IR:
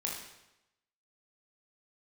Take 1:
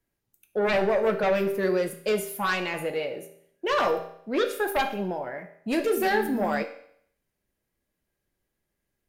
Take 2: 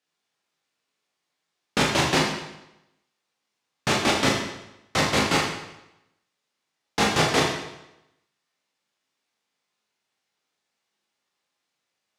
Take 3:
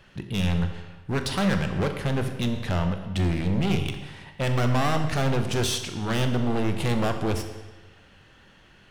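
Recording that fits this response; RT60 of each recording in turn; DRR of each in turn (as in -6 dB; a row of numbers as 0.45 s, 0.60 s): 2; 0.65 s, 0.90 s, 1.2 s; 5.0 dB, -2.5 dB, 6.0 dB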